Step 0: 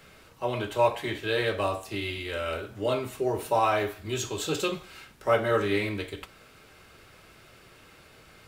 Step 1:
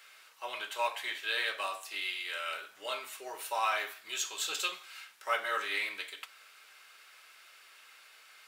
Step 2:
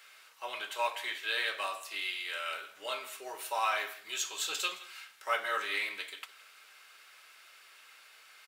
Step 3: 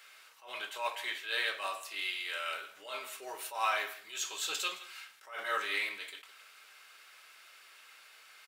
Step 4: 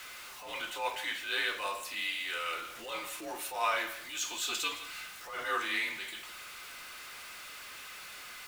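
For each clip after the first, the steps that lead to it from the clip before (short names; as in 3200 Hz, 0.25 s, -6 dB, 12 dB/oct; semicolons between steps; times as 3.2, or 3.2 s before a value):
HPF 1300 Hz 12 dB/oct
echo 0.165 s -18.5 dB
attack slew limiter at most 130 dB/s
zero-crossing step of -43.5 dBFS; frequency shift -74 Hz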